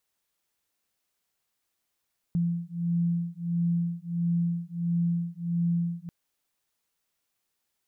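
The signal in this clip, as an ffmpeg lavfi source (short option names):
-f lavfi -i "aevalsrc='0.0398*(sin(2*PI*170*t)+sin(2*PI*171.5*t))':d=3.74:s=44100"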